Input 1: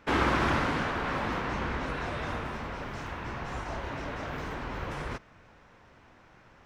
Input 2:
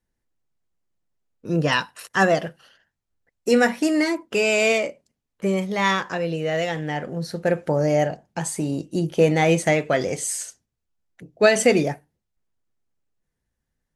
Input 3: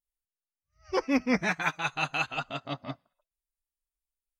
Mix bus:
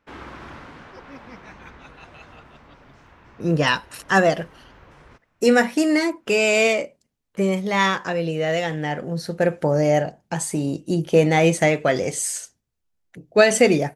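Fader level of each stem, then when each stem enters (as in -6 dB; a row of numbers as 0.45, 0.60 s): -13.0, +1.5, -18.0 dB; 0.00, 1.95, 0.00 s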